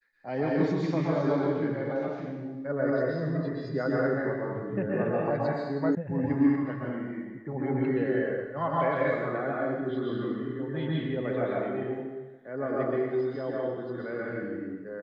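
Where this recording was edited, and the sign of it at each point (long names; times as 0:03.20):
0:05.95: cut off before it has died away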